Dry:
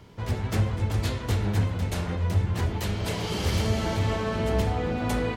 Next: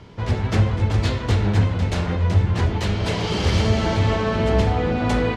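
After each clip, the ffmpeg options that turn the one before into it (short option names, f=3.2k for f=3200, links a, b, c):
-af "lowpass=5.8k,volume=6.5dB"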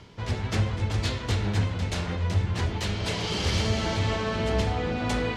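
-af "highshelf=f=2.2k:g=8,areverse,acompressor=mode=upward:threshold=-27dB:ratio=2.5,areverse,volume=-7.5dB"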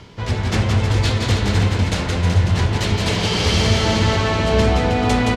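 -af "aecho=1:1:170|314.5|437.3|541.7|630.5:0.631|0.398|0.251|0.158|0.1,volume=7.5dB"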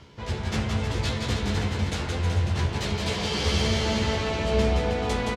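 -filter_complex "[0:a]asplit=2[a][b];[b]adelay=14,volume=-4dB[c];[a][c]amix=inputs=2:normalize=0,volume=-9dB"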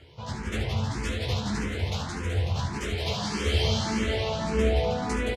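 -filter_complex "[0:a]asplit=2[a][b];[b]aecho=0:1:73:0.422[c];[a][c]amix=inputs=2:normalize=0,asplit=2[d][e];[e]afreqshift=1.7[f];[d][f]amix=inputs=2:normalize=1"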